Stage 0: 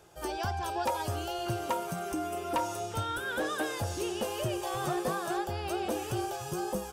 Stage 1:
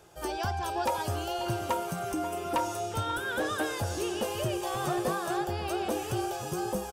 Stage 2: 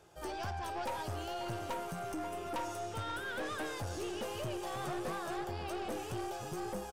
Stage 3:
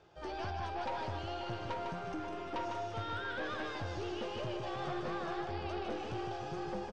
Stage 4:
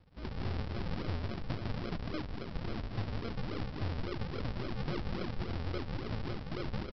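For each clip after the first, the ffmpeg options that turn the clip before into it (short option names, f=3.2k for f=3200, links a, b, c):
-filter_complex "[0:a]asplit=2[a][b];[b]adelay=536.4,volume=-13dB,highshelf=f=4k:g=-12.1[c];[a][c]amix=inputs=2:normalize=0,volume=1.5dB"
-af "highshelf=f=9.1k:g=-6,aeval=exprs='(tanh(31.6*val(0)+0.35)-tanh(0.35))/31.6':c=same,volume=-4dB"
-filter_complex "[0:a]lowpass=f=5k:w=0.5412,lowpass=f=5k:w=1.3066,asplit=2[a][b];[b]aecho=0:1:153:0.562[c];[a][c]amix=inputs=2:normalize=0,volume=-1dB"
-af "lowshelf=f=180:g=8,aresample=11025,acrusher=samples=23:mix=1:aa=0.000001:lfo=1:lforange=23:lforate=3.6,aresample=44100"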